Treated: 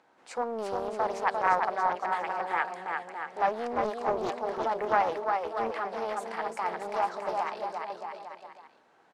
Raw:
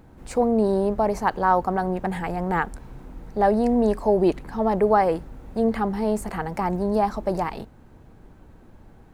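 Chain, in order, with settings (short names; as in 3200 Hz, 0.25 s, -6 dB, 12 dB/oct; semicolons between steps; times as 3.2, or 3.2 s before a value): BPF 710–6400 Hz; on a send: bouncing-ball echo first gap 0.35 s, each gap 0.8×, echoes 5; on the sum: Doppler distortion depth 0.37 ms; gain -3.5 dB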